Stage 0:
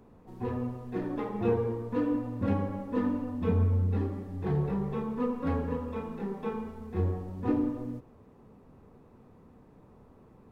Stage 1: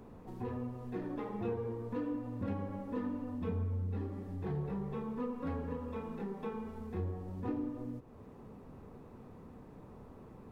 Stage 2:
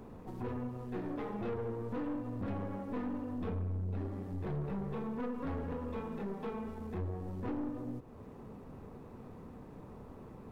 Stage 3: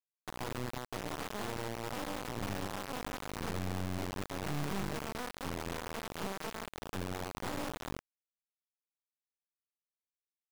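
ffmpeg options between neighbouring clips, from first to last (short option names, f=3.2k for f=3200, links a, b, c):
-af "acompressor=threshold=-48dB:ratio=2,volume=3.5dB"
-af "aeval=exprs='(tanh(70.8*val(0)+0.4)-tanh(0.4))/70.8':c=same,volume=4dB"
-filter_complex "[0:a]acrossover=split=290[a][b];[b]acompressor=threshold=-45dB:ratio=8[c];[a][c]amix=inputs=2:normalize=0,highpass=120,equalizer=f=240:t=q:w=4:g=-7,equalizer=f=360:t=q:w=4:g=-4,equalizer=f=750:t=q:w=4:g=5,equalizer=f=1.9k:t=q:w=4:g=-9,lowpass=f=3.9k:w=0.5412,lowpass=f=3.9k:w=1.3066,acrusher=bits=4:dc=4:mix=0:aa=0.000001,volume=6.5dB"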